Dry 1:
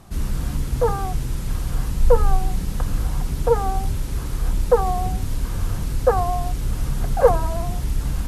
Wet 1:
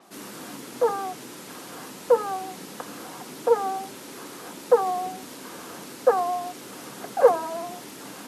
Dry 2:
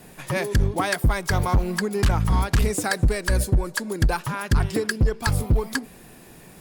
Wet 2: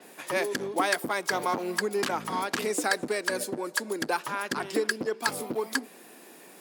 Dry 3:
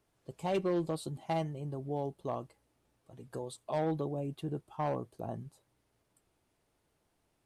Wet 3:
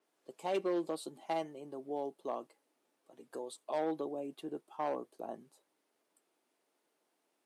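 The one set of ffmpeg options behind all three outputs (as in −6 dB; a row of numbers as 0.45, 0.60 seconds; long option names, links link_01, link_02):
-af "highpass=frequency=260:width=0.5412,highpass=frequency=260:width=1.3066,adynamicequalizer=threshold=0.00631:dfrequency=7900:dqfactor=0.7:tfrequency=7900:tqfactor=0.7:attack=5:release=100:ratio=0.375:range=2:mode=cutabove:tftype=highshelf,volume=-1.5dB"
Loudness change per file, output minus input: −1.5, −5.5, −2.5 LU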